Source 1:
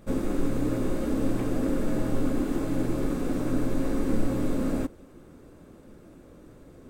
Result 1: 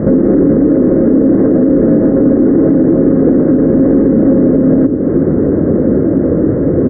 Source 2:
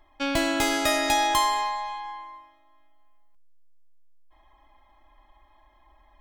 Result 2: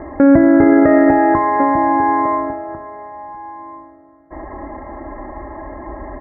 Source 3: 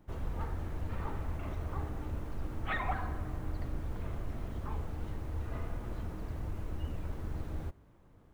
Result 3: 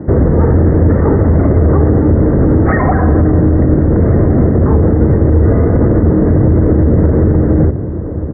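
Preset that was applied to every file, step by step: high-pass 86 Hz 12 dB/octave; compression 20:1, threshold -39 dBFS; steep low-pass 2 kHz 96 dB/octave; resonant low shelf 640 Hz +10.5 dB, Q 1.5; hum notches 60/120/180/240/300/360/420 Hz; echo from a far wall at 240 m, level -14 dB; loudness maximiser +29.5 dB; trim -1 dB

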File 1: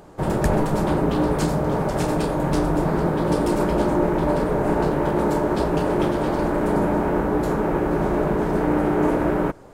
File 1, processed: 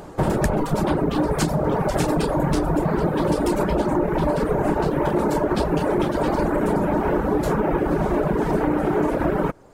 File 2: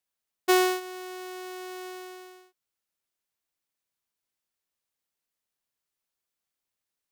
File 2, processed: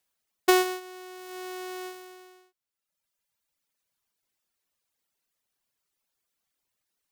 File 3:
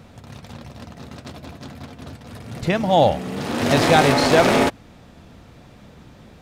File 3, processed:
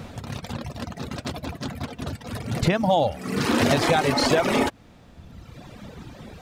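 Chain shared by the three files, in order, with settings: reverb removal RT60 1.4 s; compression 12:1, threshold -24 dBFS; trim +7.5 dB

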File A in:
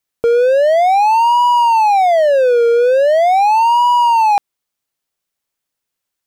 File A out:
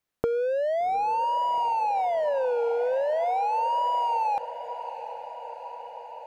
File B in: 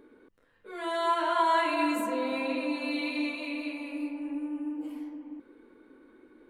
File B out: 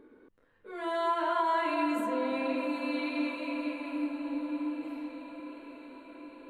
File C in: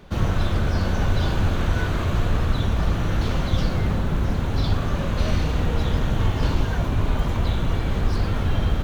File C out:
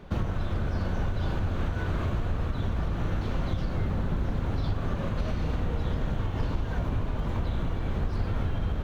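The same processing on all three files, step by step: treble shelf 3 kHz -9 dB; compression 12:1, threshold -24 dBFS; echo that smears into a reverb 770 ms, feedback 70%, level -13 dB

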